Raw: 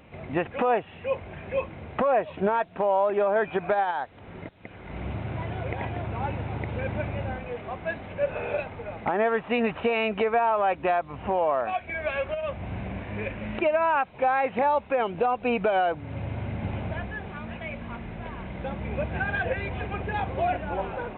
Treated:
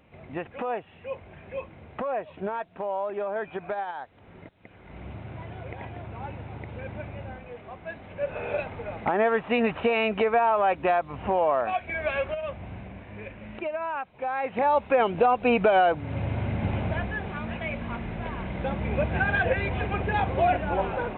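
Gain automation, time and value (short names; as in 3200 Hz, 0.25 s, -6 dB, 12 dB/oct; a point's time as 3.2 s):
7.88 s -7 dB
8.68 s +1 dB
12.2 s +1 dB
12.93 s -8 dB
14.21 s -8 dB
14.85 s +3.5 dB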